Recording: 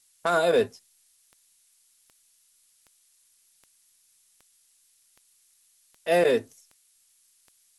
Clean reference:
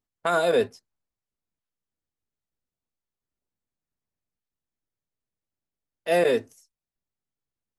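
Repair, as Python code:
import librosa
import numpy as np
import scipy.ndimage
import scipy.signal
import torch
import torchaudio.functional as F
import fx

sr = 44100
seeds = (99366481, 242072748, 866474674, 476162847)

y = fx.fix_declip(x, sr, threshold_db=-14.0)
y = fx.fix_declick_ar(y, sr, threshold=10.0)
y = fx.noise_reduce(y, sr, print_start_s=4.62, print_end_s=5.12, reduce_db=25.0)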